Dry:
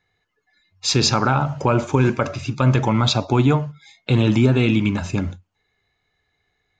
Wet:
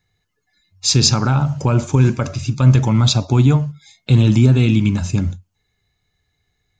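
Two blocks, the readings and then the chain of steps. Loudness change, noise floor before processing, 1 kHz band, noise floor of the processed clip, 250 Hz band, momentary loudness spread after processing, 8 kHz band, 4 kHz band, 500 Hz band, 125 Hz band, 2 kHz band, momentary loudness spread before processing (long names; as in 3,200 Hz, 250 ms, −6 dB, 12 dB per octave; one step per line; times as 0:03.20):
+3.5 dB, −73 dBFS, −4.0 dB, −71 dBFS, +2.0 dB, 9 LU, +6.5 dB, +3.0 dB, −2.5 dB, +6.0 dB, −3.0 dB, 9 LU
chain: bass and treble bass +11 dB, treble +12 dB
level −4 dB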